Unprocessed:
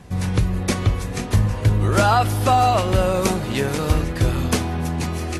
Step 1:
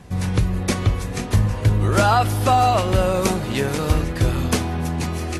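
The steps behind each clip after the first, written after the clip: nothing audible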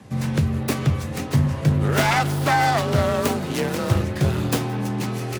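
self-modulated delay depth 0.36 ms; frequency shift +39 Hz; echo 0.171 s -24 dB; gain -1.5 dB

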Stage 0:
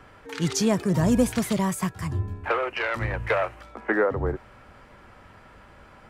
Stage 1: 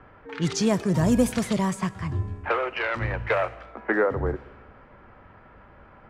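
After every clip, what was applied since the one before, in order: low-pass opened by the level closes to 1800 Hz, open at -17.5 dBFS; Schroeder reverb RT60 1.5 s, combs from 26 ms, DRR 18.5 dB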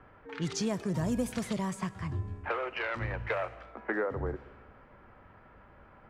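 compressor 2:1, threshold -25 dBFS, peak gain reduction 6 dB; gain -5.5 dB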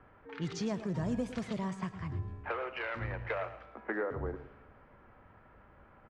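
air absorption 95 m; echo 0.111 s -12.5 dB; gain -3 dB

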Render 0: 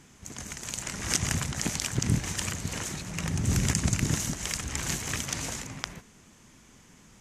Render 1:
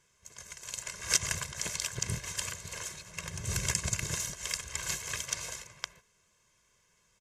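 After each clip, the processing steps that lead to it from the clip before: low shelf 460 Hz -9.5 dB; comb 1.9 ms, depth 82%; upward expander 1.5:1, over -48 dBFS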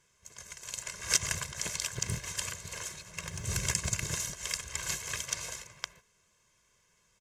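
short-mantissa float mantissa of 4-bit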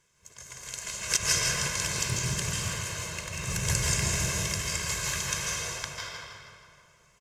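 feedback echo 0.161 s, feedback 47%, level -8.5 dB; reverb RT60 2.3 s, pre-delay 0.138 s, DRR -5 dB

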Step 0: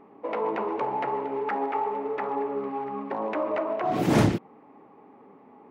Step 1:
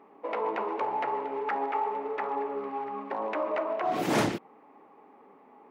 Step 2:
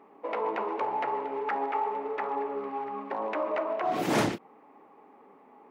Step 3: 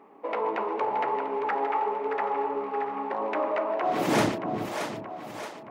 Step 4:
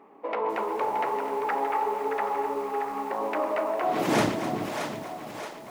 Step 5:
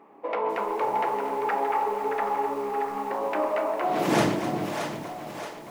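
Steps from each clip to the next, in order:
HPF 500 Hz 6 dB/oct
ending taper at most 450 dB/s
split-band echo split 440 Hz, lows 0.367 s, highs 0.624 s, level -7 dB; gain +2 dB
lo-fi delay 0.256 s, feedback 55%, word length 7-bit, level -11.5 dB
shoebox room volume 290 m³, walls furnished, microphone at 0.78 m

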